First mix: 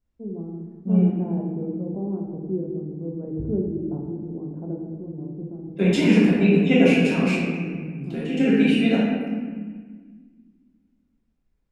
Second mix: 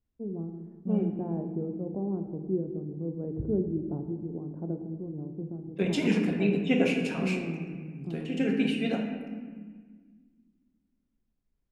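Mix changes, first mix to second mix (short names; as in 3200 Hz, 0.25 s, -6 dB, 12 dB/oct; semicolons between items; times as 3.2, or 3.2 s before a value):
first voice: send -7.0 dB; second voice: send -11.5 dB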